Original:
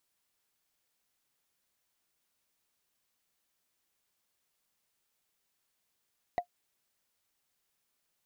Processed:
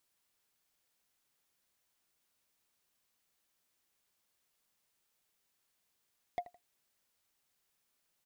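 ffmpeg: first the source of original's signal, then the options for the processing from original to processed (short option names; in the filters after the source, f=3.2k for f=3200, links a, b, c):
-f lavfi -i "aevalsrc='0.0841*pow(10,-3*t/0.09)*sin(2*PI*708*t)+0.0237*pow(10,-3*t/0.027)*sin(2*PI*1952*t)+0.00668*pow(10,-3*t/0.012)*sin(2*PI*3826*t)+0.00188*pow(10,-3*t/0.007)*sin(2*PI*6324.6*t)+0.000531*pow(10,-3*t/0.004)*sin(2*PI*9444.7*t)':d=0.45:s=44100"
-af "aecho=1:1:82|164:0.0891|0.0285,asoftclip=type=tanh:threshold=-29.5dB"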